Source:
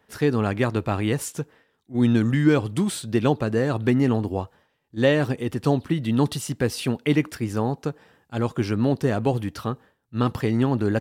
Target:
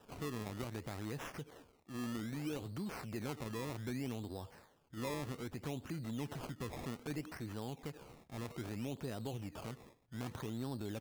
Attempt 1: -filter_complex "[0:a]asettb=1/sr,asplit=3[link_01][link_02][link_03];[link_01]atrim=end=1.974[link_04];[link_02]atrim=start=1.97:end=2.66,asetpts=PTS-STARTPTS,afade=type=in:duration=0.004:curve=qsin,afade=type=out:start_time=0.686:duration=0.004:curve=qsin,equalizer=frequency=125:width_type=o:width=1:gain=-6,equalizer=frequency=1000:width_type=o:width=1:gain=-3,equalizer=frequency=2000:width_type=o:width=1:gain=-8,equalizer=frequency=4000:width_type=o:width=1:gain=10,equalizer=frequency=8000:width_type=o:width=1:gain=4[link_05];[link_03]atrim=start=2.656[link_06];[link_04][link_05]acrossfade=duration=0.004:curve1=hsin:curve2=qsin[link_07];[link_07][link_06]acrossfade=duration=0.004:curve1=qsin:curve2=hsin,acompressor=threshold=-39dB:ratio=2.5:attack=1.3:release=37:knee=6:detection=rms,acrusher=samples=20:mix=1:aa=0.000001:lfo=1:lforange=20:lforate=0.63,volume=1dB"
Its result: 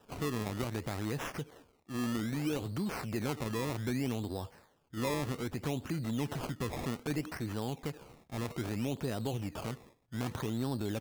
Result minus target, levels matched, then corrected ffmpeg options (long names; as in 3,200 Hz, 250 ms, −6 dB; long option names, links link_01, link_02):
downward compressor: peak gain reduction −7 dB
-filter_complex "[0:a]asettb=1/sr,asplit=3[link_01][link_02][link_03];[link_01]atrim=end=1.974[link_04];[link_02]atrim=start=1.97:end=2.66,asetpts=PTS-STARTPTS,afade=type=in:duration=0.004:curve=qsin,afade=type=out:start_time=0.686:duration=0.004:curve=qsin,equalizer=frequency=125:width_type=o:width=1:gain=-6,equalizer=frequency=1000:width_type=o:width=1:gain=-3,equalizer=frequency=2000:width_type=o:width=1:gain=-8,equalizer=frequency=4000:width_type=o:width=1:gain=10,equalizer=frequency=8000:width_type=o:width=1:gain=4[link_05];[link_03]atrim=start=2.656[link_06];[link_04][link_05]acrossfade=duration=0.004:curve1=hsin:curve2=qsin[link_07];[link_07][link_06]acrossfade=duration=0.004:curve1=qsin:curve2=hsin,acompressor=threshold=-50.5dB:ratio=2.5:attack=1.3:release=37:knee=6:detection=rms,acrusher=samples=20:mix=1:aa=0.000001:lfo=1:lforange=20:lforate=0.63,volume=1dB"